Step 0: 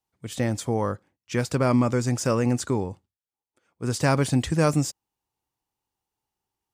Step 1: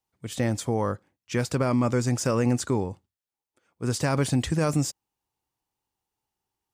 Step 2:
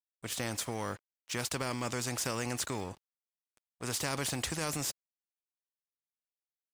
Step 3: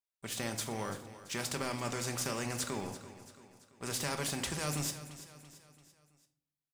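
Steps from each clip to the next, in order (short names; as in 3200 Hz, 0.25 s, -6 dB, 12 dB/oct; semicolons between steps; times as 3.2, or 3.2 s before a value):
limiter -15 dBFS, peak gain reduction 6 dB
crossover distortion -54.5 dBFS; spectral compressor 2:1; gain -4 dB
feedback echo 0.337 s, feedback 48%, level -14.5 dB; reverb RT60 0.55 s, pre-delay 5 ms, DRR 5.5 dB; gain -2.5 dB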